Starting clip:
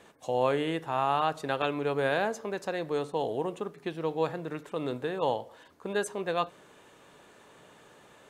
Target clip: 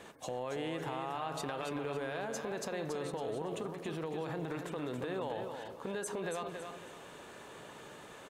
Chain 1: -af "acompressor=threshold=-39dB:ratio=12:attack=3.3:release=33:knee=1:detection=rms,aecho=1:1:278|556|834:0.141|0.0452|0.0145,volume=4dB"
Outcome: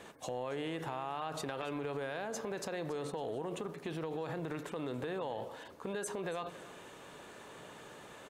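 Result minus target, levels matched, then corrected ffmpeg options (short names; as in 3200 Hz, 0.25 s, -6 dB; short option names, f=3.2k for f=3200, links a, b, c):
echo-to-direct -10.5 dB
-af "acompressor=threshold=-39dB:ratio=12:attack=3.3:release=33:knee=1:detection=rms,aecho=1:1:278|556|834|1112:0.473|0.151|0.0485|0.0155,volume=4dB"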